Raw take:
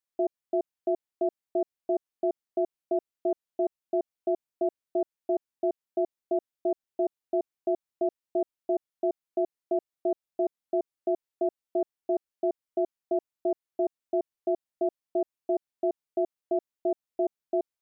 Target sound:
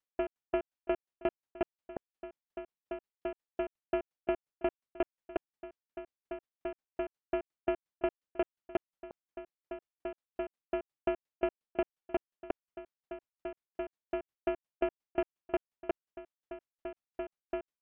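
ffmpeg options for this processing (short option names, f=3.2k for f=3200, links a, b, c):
-af "aemphasis=mode=reproduction:type=50kf,aeval=exprs='0.119*(cos(1*acos(clip(val(0)/0.119,-1,1)))-cos(1*PI/2))+0.0211*(cos(5*acos(clip(val(0)/0.119,-1,1)))-cos(5*PI/2))':c=same,aeval=exprs='val(0)*pow(10,-28*if(lt(mod(5.6*n/s,1),2*abs(5.6)/1000),1-mod(5.6*n/s,1)/(2*abs(5.6)/1000),(mod(5.6*n/s,1)-2*abs(5.6)/1000)/(1-2*abs(5.6)/1000))/20)':c=same"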